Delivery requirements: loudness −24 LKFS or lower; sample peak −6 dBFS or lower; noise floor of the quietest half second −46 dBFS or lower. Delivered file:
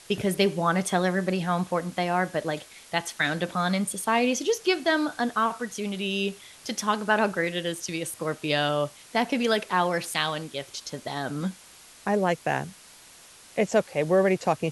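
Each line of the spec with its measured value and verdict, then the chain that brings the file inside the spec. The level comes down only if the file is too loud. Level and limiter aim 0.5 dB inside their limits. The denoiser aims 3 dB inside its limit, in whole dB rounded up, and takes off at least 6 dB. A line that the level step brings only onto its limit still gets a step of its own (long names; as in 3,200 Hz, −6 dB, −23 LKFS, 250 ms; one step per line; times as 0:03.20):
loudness −26.5 LKFS: in spec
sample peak −8.0 dBFS: in spec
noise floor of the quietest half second −51 dBFS: in spec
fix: no processing needed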